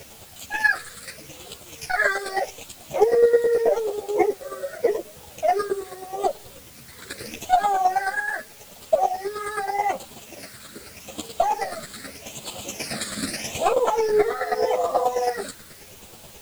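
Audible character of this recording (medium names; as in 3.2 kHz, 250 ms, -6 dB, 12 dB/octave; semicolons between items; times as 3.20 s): phasing stages 8, 0.82 Hz, lowest notch 800–1800 Hz; chopped level 9.3 Hz, depth 60%, duty 15%; a quantiser's noise floor 10-bit, dither triangular; a shimmering, thickened sound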